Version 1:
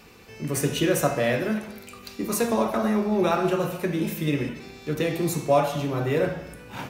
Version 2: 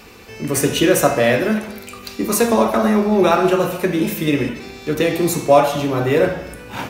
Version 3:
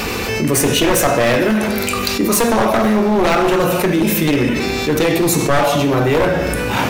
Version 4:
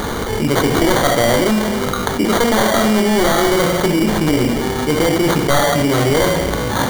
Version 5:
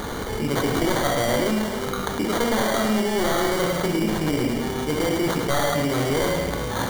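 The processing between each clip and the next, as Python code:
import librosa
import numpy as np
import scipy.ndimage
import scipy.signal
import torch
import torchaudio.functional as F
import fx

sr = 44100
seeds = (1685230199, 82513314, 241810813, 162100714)

y1 = fx.peak_eq(x, sr, hz=150.0, db=-6.5, octaves=0.46)
y1 = y1 * librosa.db_to_amplitude(8.5)
y2 = np.minimum(y1, 2.0 * 10.0 ** (-13.5 / 20.0) - y1)
y2 = fx.env_flatten(y2, sr, amount_pct=70)
y2 = y2 * librosa.db_to_amplitude(-1.5)
y3 = fx.sample_hold(y2, sr, seeds[0], rate_hz=2600.0, jitter_pct=0)
y4 = y3 + 10.0 ** (-7.0 / 20.0) * np.pad(y3, (int(107 * sr / 1000.0), 0))[:len(y3)]
y4 = y4 * librosa.db_to_amplitude(-8.5)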